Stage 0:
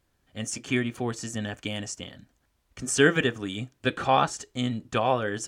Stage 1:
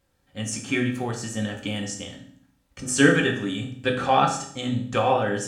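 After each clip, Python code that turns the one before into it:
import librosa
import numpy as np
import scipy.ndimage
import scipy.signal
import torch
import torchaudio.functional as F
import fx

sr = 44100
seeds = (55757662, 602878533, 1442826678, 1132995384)

y = fx.rev_fdn(x, sr, rt60_s=0.58, lf_ratio=1.45, hf_ratio=0.95, size_ms=11.0, drr_db=0.5)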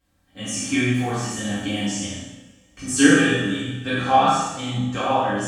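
y = fx.spec_trails(x, sr, decay_s=0.62)
y = fx.rev_double_slope(y, sr, seeds[0], early_s=0.79, late_s=2.2, knee_db=-18, drr_db=-6.0)
y = fx.rider(y, sr, range_db=3, speed_s=2.0)
y = y * 10.0 ** (-7.5 / 20.0)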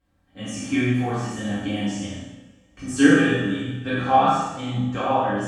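y = fx.high_shelf(x, sr, hz=3300.0, db=-11.5)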